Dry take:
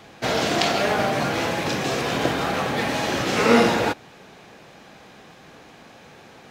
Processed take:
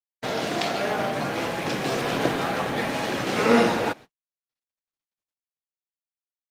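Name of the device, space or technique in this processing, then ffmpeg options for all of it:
video call: -af "highpass=110,dynaudnorm=framelen=210:gausssize=11:maxgain=7dB,agate=range=-59dB:threshold=-34dB:ratio=16:detection=peak,volume=-4dB" -ar 48000 -c:a libopus -b:a 32k

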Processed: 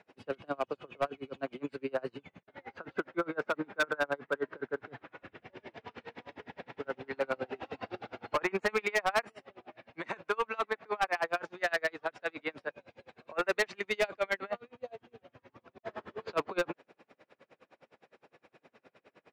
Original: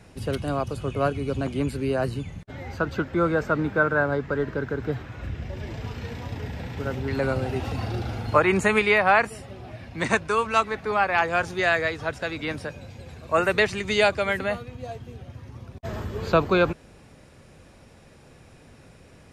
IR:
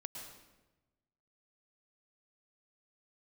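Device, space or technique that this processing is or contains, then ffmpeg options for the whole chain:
helicopter radio: -af "highpass=370,lowpass=2900,aeval=exprs='val(0)*pow(10,-33*(0.5-0.5*cos(2*PI*9.7*n/s))/20)':channel_layout=same,asoftclip=type=hard:threshold=-23dB"

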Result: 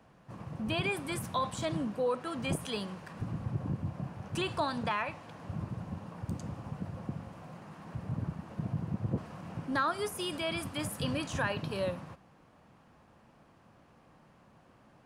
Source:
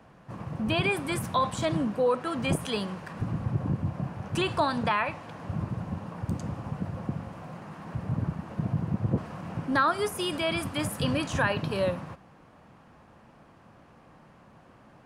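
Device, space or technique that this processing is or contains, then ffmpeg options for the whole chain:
exciter from parts: -filter_complex "[0:a]asplit=2[link_01][link_02];[link_02]highpass=2300,asoftclip=type=tanh:threshold=-30.5dB,volume=-8.5dB[link_03];[link_01][link_03]amix=inputs=2:normalize=0,volume=-6dB"

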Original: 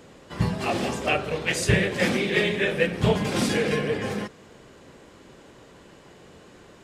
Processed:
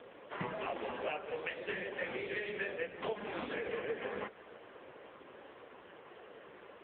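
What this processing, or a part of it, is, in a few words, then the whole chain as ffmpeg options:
voicemail: -filter_complex "[0:a]asettb=1/sr,asplit=3[link_01][link_02][link_03];[link_01]atrim=end=1.554[link_04];[link_02]atrim=start=1.55:end=2.42,asetpts=PTS-STARTPTS,afade=type=in:duration=0.004:curve=qsin,afade=type=out:start_time=0.866:duration=0.004:curve=qsin,lowpass=9100[link_05];[link_03]atrim=start=2.416[link_06];[link_04][link_05]acrossfade=duration=0.004:curve1=hsin:curve2=qsin[link_07];[link_07][link_06]acrossfade=duration=0.004:curve1=qsin:curve2=hsin,highpass=420,lowpass=2800,acompressor=threshold=-35dB:ratio=10,volume=3dB" -ar 8000 -c:a libopencore_amrnb -b:a 5150

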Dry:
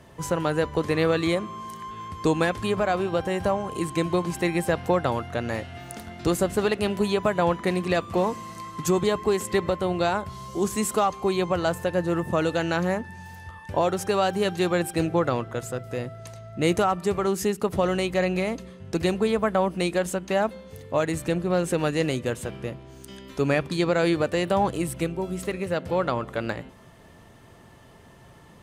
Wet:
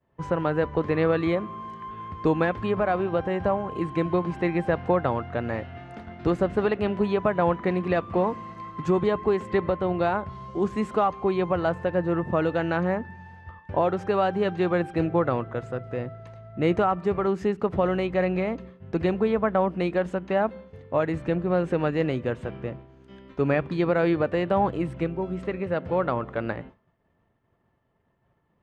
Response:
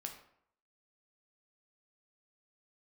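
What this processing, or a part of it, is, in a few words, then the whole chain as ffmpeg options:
hearing-loss simulation: -af "lowpass=2100,agate=range=-33dB:threshold=-38dB:ratio=3:detection=peak"

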